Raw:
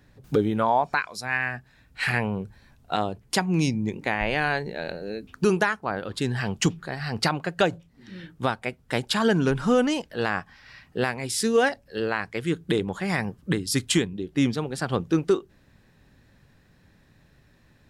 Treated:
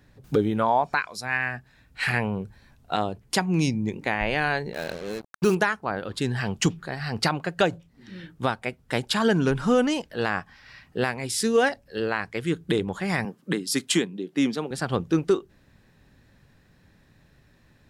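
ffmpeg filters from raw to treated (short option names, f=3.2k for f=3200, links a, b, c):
-filter_complex "[0:a]asettb=1/sr,asplit=3[a][b][c];[a]atrim=end=4.734[d];[b]atrim=start=4.73:end=5.55,asetpts=PTS-STARTPTS,afade=t=in:d=0.004:c=qsin,afade=t=out:st=0.816:d=0.004:c=qsin,acrusher=bits=5:mix=0:aa=0.5[e];[c]atrim=start=5.546[f];[d][e]acrossfade=d=0.004:c1=hsin:c2=qsin[g];[g][f]acrossfade=d=0.004:c1=qsin:c2=hsin,asettb=1/sr,asplit=3[h][i][j];[h]atrim=end=13.254[k];[i]atrim=start=13.25:end=14.71,asetpts=PTS-STARTPTS,afade=t=in:d=0.004:c=qsin,afade=t=out:st=1.456:d=0.004:c=qsin,highpass=f=180:w=0.5412,highpass=f=180:w=1.3066[l];[j]atrim=start=14.706[m];[k][l]acrossfade=d=0.004:c1=hsin:c2=qsin[n];[n][m]acrossfade=d=0.004:c1=qsin:c2=hsin"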